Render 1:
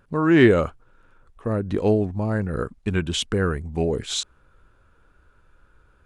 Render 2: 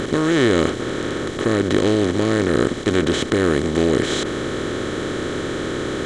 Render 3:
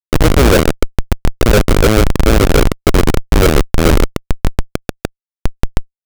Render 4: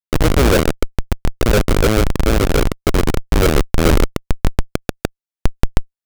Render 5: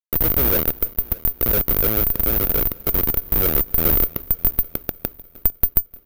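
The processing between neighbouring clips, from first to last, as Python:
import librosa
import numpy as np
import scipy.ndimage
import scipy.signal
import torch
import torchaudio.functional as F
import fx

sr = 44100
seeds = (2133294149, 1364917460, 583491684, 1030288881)

y1 = fx.bin_compress(x, sr, power=0.2)
y1 = y1 * librosa.db_to_amplitude(-5.5)
y2 = fx.graphic_eq_10(y1, sr, hz=(125, 500, 4000, 8000), db=(-6, 6, -5, 6))
y2 = fx.filter_lfo_lowpass(y2, sr, shape='sine', hz=6.9, low_hz=490.0, high_hz=1700.0, q=4.4)
y2 = fx.schmitt(y2, sr, flips_db=-6.5)
y2 = y2 * librosa.db_to_amplitude(6.0)
y3 = fx.rider(y2, sr, range_db=4, speed_s=2.0)
y3 = y3 * librosa.db_to_amplitude(-4.0)
y4 = fx.echo_heads(y3, sr, ms=304, heads='first and second', feedback_pct=50, wet_db=-24)
y4 = (np.kron(scipy.signal.resample_poly(y4, 1, 3), np.eye(3)[0]) * 3)[:len(y4)]
y4 = y4 * librosa.db_to_amplitude(-10.5)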